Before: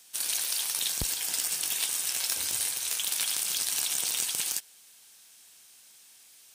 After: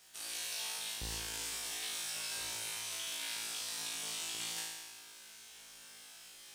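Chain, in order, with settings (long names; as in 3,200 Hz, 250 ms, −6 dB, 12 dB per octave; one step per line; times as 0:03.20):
high-shelf EQ 6,300 Hz −11.5 dB
reversed playback
downward compressor 6 to 1, threshold −44 dBFS, peak gain reduction 16 dB
reversed playback
bit reduction 12 bits
flutter between parallel walls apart 3.1 metres, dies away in 1.2 s
highs frequency-modulated by the lows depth 0.27 ms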